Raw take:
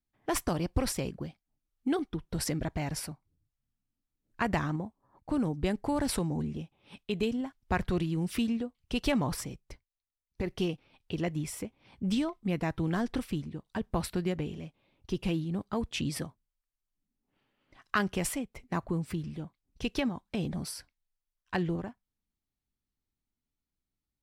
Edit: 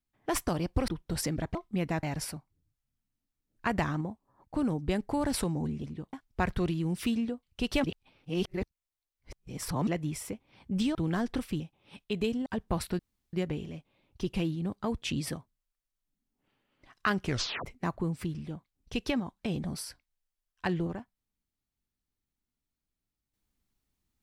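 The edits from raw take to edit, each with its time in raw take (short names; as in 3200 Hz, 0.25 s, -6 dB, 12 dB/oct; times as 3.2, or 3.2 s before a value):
0.88–2.11 cut
6.59–7.45 swap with 13.4–13.69
9.16–11.19 reverse
12.27–12.75 move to 2.78
14.22 insert room tone 0.34 s
18.12 tape stop 0.42 s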